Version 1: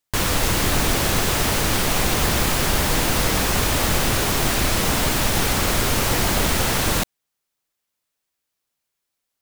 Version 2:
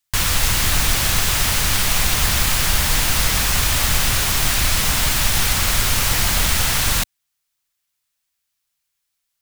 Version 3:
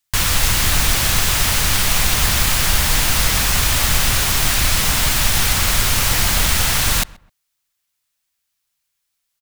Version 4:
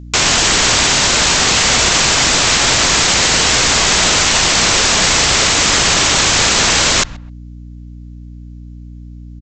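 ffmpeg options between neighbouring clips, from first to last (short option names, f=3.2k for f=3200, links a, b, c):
-af "equalizer=f=370:t=o:w=2.5:g=-14,volume=4.5dB"
-filter_complex "[0:a]asplit=2[a][b];[b]adelay=130,lowpass=f=1.6k:p=1,volume=-20.5dB,asplit=2[c][d];[d]adelay=130,lowpass=f=1.6k:p=1,volume=0.28[e];[a][c][e]amix=inputs=3:normalize=0,volume=1.5dB"
-af "aresample=16000,aeval=exprs='(mod(6.31*val(0)+1,2)-1)/6.31':c=same,aresample=44100,aeval=exprs='val(0)+0.0112*(sin(2*PI*60*n/s)+sin(2*PI*2*60*n/s)/2+sin(2*PI*3*60*n/s)/3+sin(2*PI*4*60*n/s)/4+sin(2*PI*5*60*n/s)/5)':c=same,volume=8.5dB"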